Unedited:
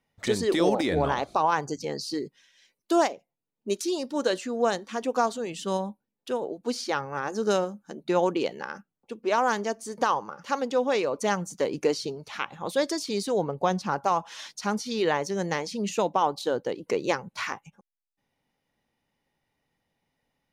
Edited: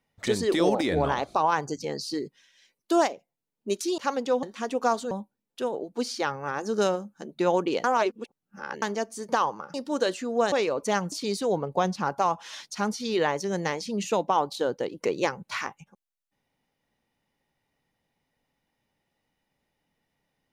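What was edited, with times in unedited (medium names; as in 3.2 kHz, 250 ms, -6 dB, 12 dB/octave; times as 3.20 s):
3.98–4.76 s: swap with 10.43–10.88 s
5.44–5.80 s: delete
8.53–9.51 s: reverse
11.48–12.98 s: delete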